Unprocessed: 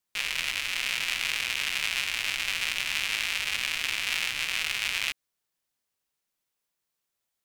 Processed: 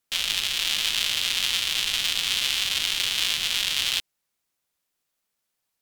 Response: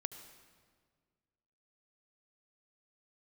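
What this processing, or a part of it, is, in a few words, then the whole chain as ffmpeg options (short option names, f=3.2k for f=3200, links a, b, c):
nightcore: -af "asetrate=56448,aresample=44100,volume=4.5dB"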